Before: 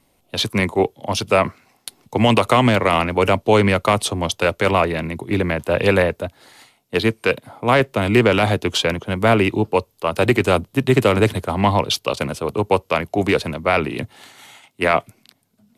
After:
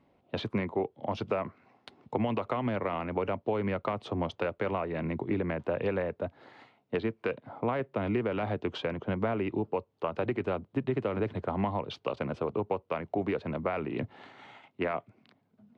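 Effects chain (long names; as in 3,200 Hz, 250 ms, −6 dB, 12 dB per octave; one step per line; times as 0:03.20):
high-pass filter 140 Hz 6 dB per octave
high-shelf EQ 5,700 Hz −10.5 dB
downward compressor 6 to 1, threshold −26 dBFS, peak gain reduction 15 dB
head-to-tape spacing loss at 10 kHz 32 dB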